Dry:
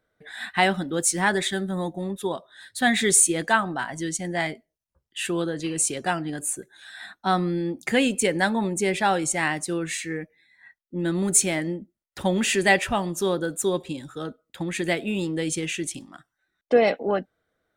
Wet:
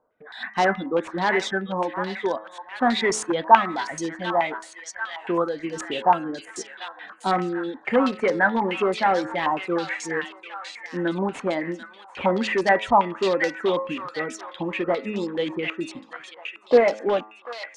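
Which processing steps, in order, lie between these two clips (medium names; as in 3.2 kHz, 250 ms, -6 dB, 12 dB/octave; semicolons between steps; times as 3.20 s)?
reverb removal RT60 0.91 s; de-hum 107.3 Hz, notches 26; in parallel at -8.5 dB: integer overflow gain 18 dB; on the sum: ten-band graphic EQ 250 Hz +8 dB, 500 Hz +10 dB, 1 kHz +10 dB; on a send: feedback echo behind a high-pass 741 ms, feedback 48%, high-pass 1.5 kHz, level -4 dB; on the sum: step-sequenced low-pass 9.3 Hz 970–5600 Hz; trim -10.5 dB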